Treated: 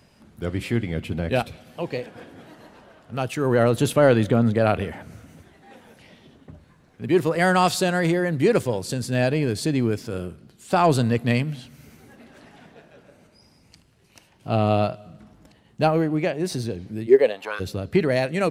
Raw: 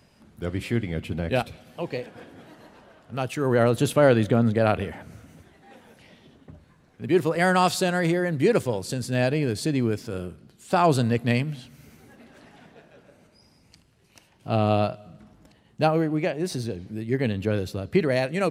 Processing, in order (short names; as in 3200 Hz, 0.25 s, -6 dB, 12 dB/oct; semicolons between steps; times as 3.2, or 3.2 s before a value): in parallel at -11 dB: soft clip -16.5 dBFS, distortion -12 dB; 17.06–17.59 on the sum: resonant high-pass 340 Hz -> 1200 Hz, resonance Q 4.6